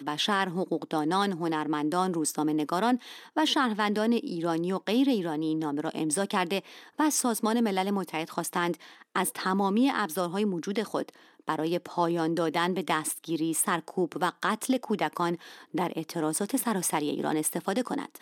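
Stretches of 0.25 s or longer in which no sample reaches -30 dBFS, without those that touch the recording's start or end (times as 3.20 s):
2.96–3.37 s
6.59–6.99 s
8.74–9.16 s
11.09–11.49 s
15.35–15.75 s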